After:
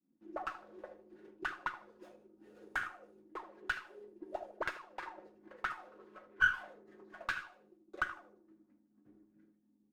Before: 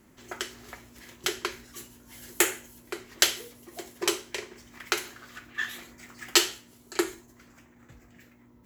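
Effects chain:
downward expander −47 dBFS
low-shelf EQ 430 Hz −4 dB
notch filter 6,700 Hz, Q 9.1
comb filter 4.8 ms, depth 52%
downward compressor 4 to 1, threshold −33 dBFS, peak gain reduction 15.5 dB
change of speed 0.872×
envelope filter 270–1,500 Hz, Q 9.7, up, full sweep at −32.5 dBFS
feedback echo with a low-pass in the loop 77 ms, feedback 45%, low-pass 900 Hz, level −9.5 dB
windowed peak hold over 3 samples
level +12.5 dB

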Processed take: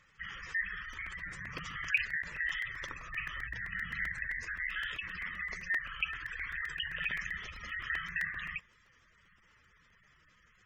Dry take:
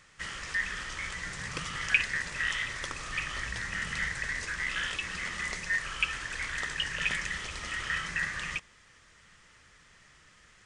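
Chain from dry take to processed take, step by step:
gate on every frequency bin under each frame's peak −15 dB strong
dynamic equaliser 1,800 Hz, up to +3 dB, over −43 dBFS, Q 2.4
regular buffer underruns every 0.13 s, samples 128, repeat, from 0:00.93
level −5.5 dB

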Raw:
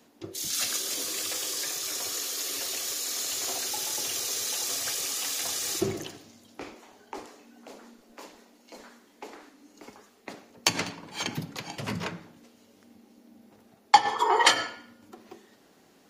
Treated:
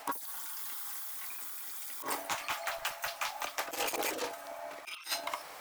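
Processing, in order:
compressor whose output falls as the input rises −42 dBFS, ratio −1
change of speed 2.87×
level +3 dB

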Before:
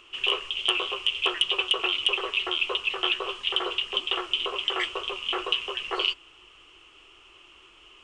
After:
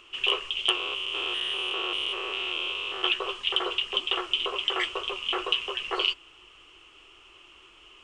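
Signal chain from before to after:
0:00.75–0:03.04: spectrum averaged block by block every 200 ms

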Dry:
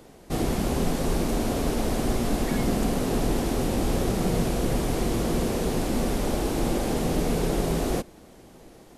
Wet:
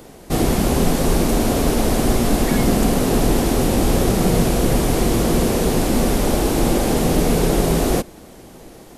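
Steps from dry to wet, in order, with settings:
high-shelf EQ 9,800 Hz +5.5 dB
level +8 dB

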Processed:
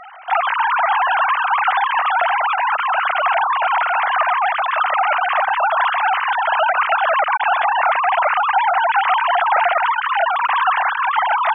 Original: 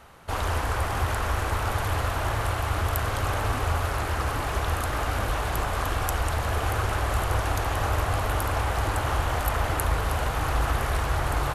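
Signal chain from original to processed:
three sine waves on the formant tracks
level +8.5 dB

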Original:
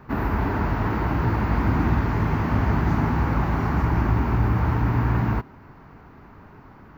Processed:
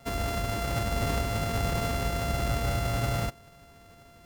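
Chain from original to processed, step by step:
samples sorted by size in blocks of 64 samples
phase-vocoder stretch with locked phases 0.61×
level −6 dB

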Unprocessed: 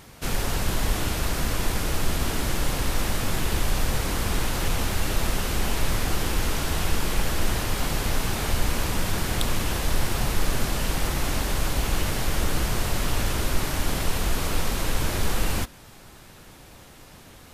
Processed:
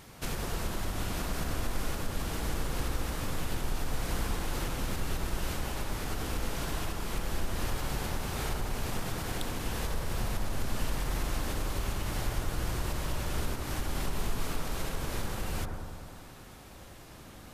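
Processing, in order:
downward compressor, threshold −26 dBFS, peak gain reduction 11 dB
on a send: bucket-brigade delay 100 ms, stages 1,024, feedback 74%, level −4 dB
on the sum: level −4 dB

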